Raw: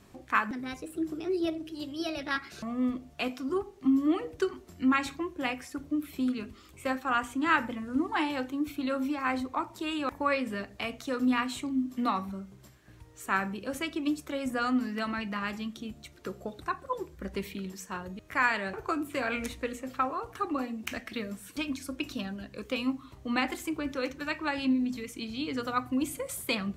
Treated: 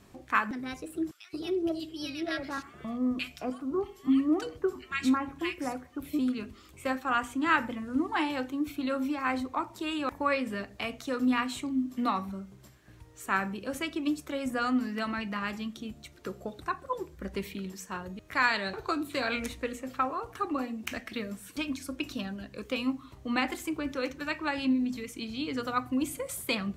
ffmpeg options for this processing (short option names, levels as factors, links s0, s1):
-filter_complex "[0:a]asettb=1/sr,asplit=3[s0][s1][s2];[s0]atrim=end=1.114[s3];[s1]atrim=start=1.11:end=6.19,asetpts=PTS-STARTPTS,afade=t=in:d=0.004:c=qsin,afade=t=out:st=5.076:d=0.004:c=qsin,acrossover=split=1500[s4][s5];[s4]adelay=220[s6];[s6][s5]amix=inputs=2:normalize=0,atrim=end_sample=224028[s7];[s2]atrim=start=6.186[s8];[s3][s7]acrossfade=d=0.004:c1=hsin:c2=qsin[s9];[s9][s8]acrossfade=d=0.004:c1=qsin:c2=hsin,asettb=1/sr,asplit=3[s10][s11][s12];[s10]atrim=end=18.334[s13];[s11]atrim=start=18.33:end=19.4,asetpts=PTS-STARTPTS,afade=t=in:d=0.004:c=qsin,afade=t=out:st=1.066:d=0.004:c=qsin,equalizer=f=4000:t=o:w=0.34:g=14[s14];[s12]atrim=start=19.396[s15];[s13][s14]acrossfade=d=0.004:c1=hsin:c2=qsin[s16];[s16][s15]acrossfade=d=0.004:c1=qsin:c2=hsin"